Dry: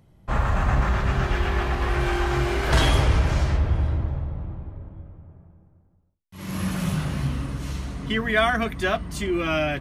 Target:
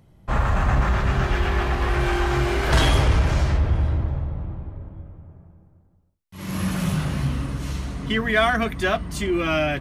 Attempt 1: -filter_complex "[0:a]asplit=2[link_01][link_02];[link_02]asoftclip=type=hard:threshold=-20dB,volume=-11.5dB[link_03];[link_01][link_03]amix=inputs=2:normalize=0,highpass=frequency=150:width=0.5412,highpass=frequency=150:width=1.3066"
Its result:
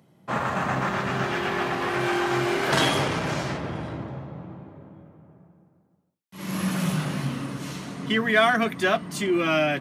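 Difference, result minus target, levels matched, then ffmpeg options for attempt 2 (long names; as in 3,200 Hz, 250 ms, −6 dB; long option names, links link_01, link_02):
125 Hz band −6.5 dB
-filter_complex "[0:a]asplit=2[link_01][link_02];[link_02]asoftclip=type=hard:threshold=-20dB,volume=-11.5dB[link_03];[link_01][link_03]amix=inputs=2:normalize=0"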